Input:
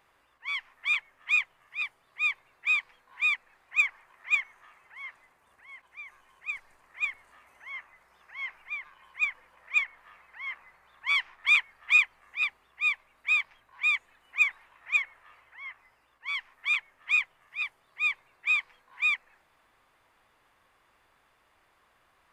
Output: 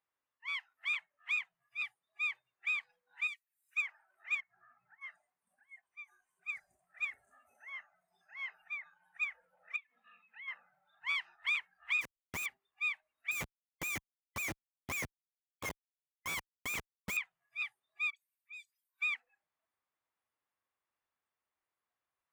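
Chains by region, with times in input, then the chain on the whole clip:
0:03.27–0:03.77: first-order pre-emphasis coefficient 0.97 + one half of a high-frequency compander encoder only
0:04.40–0:05.00: low-pass filter 2,400 Hz 24 dB per octave + downward compressor 3 to 1, threshold −51 dBFS + hum with harmonics 60 Hz, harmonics 5, −79 dBFS
0:09.76–0:10.48: downward compressor 20 to 1, threshold −41 dBFS + loudspeaker in its box 180–5,000 Hz, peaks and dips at 220 Hz +9 dB, 720 Hz −5 dB, 1,500 Hz −5 dB, 2,500 Hz +6 dB, 3,500 Hz +5 dB
0:12.01–0:12.46: comparator with hysteresis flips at −44 dBFS + background raised ahead of every attack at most 110 dB per second
0:13.31–0:17.17: hum removal 297.7 Hz, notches 16 + dynamic equaliser 350 Hz, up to −5 dB, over −56 dBFS, Q 1.6 + comparator with hysteresis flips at −38 dBFS
0:18.10–0:19.01: first difference + all-pass dispersion highs, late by 67 ms, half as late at 2,400 Hz + downward compressor 2 to 1, threshold −49 dBFS
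whole clip: high-pass filter 72 Hz 12 dB per octave; noise reduction from a noise print of the clip's start 21 dB; downward compressor 4 to 1, threshold −26 dBFS; level −5.5 dB

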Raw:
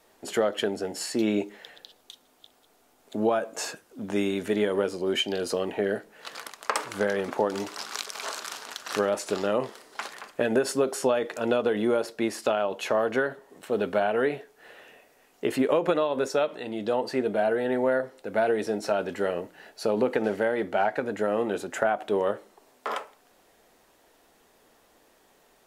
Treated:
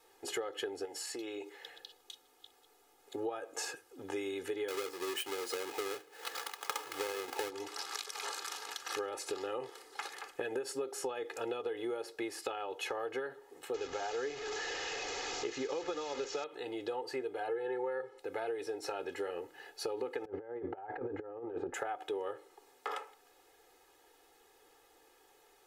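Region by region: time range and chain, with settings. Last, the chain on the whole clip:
0:00.85–0:01.62: low-shelf EQ 260 Hz −10 dB + downward compressor 3 to 1, threshold −35 dBFS
0:04.68–0:07.50: each half-wave held at its own peak + high-pass filter 340 Hz 6 dB per octave
0:13.74–0:16.44: linear delta modulator 64 kbit/s, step −28 dBFS + bad sample-rate conversion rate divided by 3×, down none, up filtered
0:17.48–0:18.19: high-frequency loss of the air 53 metres + comb filter 2.3 ms, depth 95%
0:20.25–0:21.74: low-pass filter 1,100 Hz + low-shelf EQ 180 Hz +8.5 dB + compressor whose output falls as the input rises −32 dBFS, ratio −0.5
whole clip: low-shelf EQ 220 Hz −7.5 dB; comb filter 2.4 ms, depth 99%; downward compressor 4 to 1, threshold −30 dBFS; level −6 dB

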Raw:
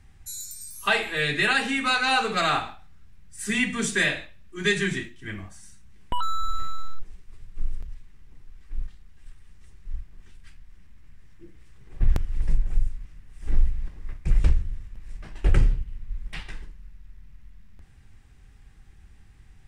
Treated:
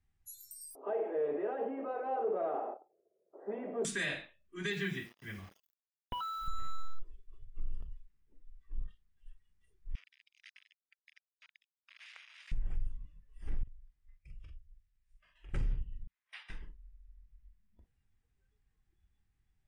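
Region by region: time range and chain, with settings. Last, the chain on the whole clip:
0:00.75–0:03.85: power curve on the samples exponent 0.35 + flat-topped band-pass 500 Hz, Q 1.7
0:04.70–0:06.48: Chebyshev low-pass filter 3,900 Hz + notch comb filter 310 Hz + bit-depth reduction 8 bits, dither none
0:09.95–0:12.52: linear delta modulator 64 kbit/s, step −37 dBFS + high-pass with resonance 2,300 Hz, resonance Q 2.2 + high-frequency loss of the air 54 metres
0:13.63–0:15.54: guitar amp tone stack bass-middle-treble 5-5-5 + downward compressor 2.5 to 1, threshold −43 dBFS + double-tracking delay 44 ms −5 dB
0:16.07–0:16.50: high-pass filter 1,200 Hz + high-shelf EQ 2,700 Hz −5 dB
whole clip: noise reduction from a noise print of the clip's start 17 dB; brickwall limiter −18 dBFS; level −8 dB

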